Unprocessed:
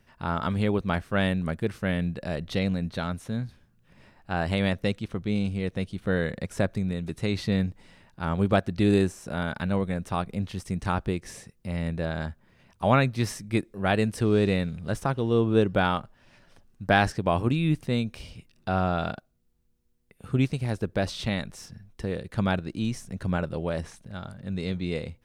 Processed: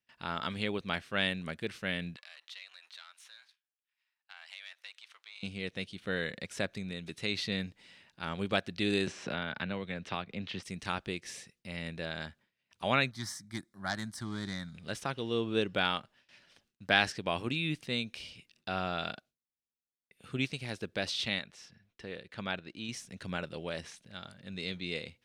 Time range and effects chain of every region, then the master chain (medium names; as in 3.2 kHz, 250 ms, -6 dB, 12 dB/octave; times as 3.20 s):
2.16–5.43 s: partial rectifier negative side -7 dB + high-pass 930 Hz 24 dB/octave + compression 2.5:1, threshold -50 dBFS
9.07–10.63 s: low-pass 3.6 kHz + three bands compressed up and down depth 100%
13.11–14.75 s: self-modulated delay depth 0.078 ms + high-pass 40 Hz + static phaser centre 1.1 kHz, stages 4
21.39–22.89 s: low-pass 2.4 kHz 6 dB/octave + bass shelf 460 Hz -5 dB
whole clip: gate with hold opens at -47 dBFS; frequency weighting D; trim -8.5 dB